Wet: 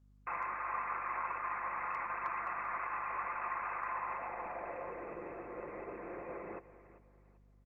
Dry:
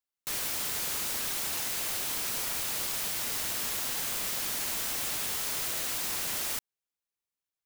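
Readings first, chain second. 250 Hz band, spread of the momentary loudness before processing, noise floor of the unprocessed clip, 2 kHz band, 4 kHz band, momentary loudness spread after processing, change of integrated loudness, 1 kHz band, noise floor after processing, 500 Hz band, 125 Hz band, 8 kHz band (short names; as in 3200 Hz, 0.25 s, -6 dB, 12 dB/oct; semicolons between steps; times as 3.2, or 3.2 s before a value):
-4.0 dB, 0 LU, under -85 dBFS, -3.5 dB, under -40 dB, 8 LU, -10.0 dB, +6.5 dB, -64 dBFS, +0.5 dB, -10.0 dB, under -40 dB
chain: comb 5.8 ms, depth 49%; limiter -23 dBFS, peak gain reduction 4.5 dB; inverted band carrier 2600 Hz; band-pass sweep 1100 Hz -> 430 Hz, 3.88–5.17; small resonant body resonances 1100/2000 Hz, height 7 dB, ringing for 20 ms; hard clip -35 dBFS, distortion -44 dB; feedback echo 0.391 s, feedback 31%, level -15 dB; hum 50 Hz, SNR 23 dB; gain +8 dB; Opus 20 kbps 48000 Hz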